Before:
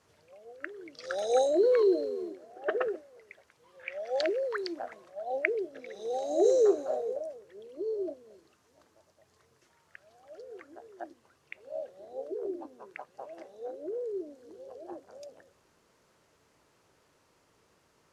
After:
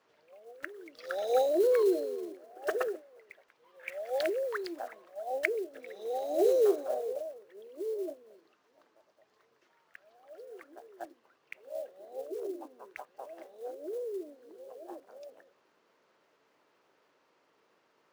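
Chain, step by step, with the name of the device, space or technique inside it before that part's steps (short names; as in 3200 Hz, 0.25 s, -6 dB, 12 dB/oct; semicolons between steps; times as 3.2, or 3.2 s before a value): early digital voice recorder (BPF 290–3900 Hz; block floating point 5-bit); gain -1 dB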